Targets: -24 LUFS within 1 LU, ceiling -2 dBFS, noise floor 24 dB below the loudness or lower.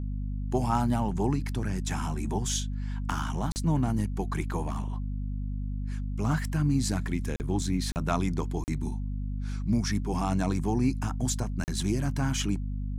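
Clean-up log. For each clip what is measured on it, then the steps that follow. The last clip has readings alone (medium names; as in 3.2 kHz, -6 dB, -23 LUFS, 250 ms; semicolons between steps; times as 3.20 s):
dropouts 5; longest dropout 39 ms; hum 50 Hz; highest harmonic 250 Hz; hum level -30 dBFS; loudness -30.0 LUFS; peak level -12.0 dBFS; loudness target -24.0 LUFS
-> interpolate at 3.52/7.36/7.92/8.64/11.64 s, 39 ms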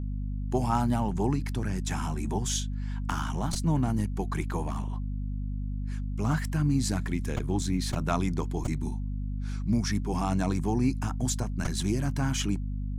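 dropouts 0; hum 50 Hz; highest harmonic 250 Hz; hum level -29 dBFS
-> de-hum 50 Hz, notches 5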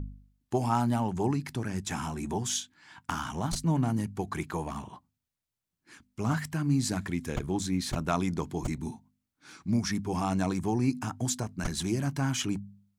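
hum not found; loudness -31.0 LUFS; peak level -13.0 dBFS; loudness target -24.0 LUFS
-> trim +7 dB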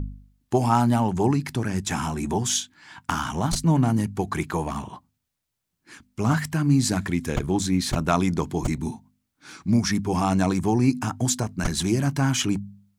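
loudness -24.0 LUFS; peak level -6.0 dBFS; noise floor -80 dBFS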